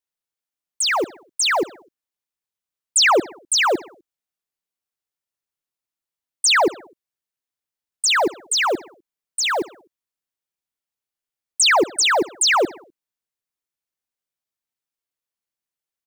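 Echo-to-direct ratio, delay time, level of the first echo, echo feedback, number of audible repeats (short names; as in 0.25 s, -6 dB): -19.0 dB, 63 ms, -20.5 dB, 55%, 3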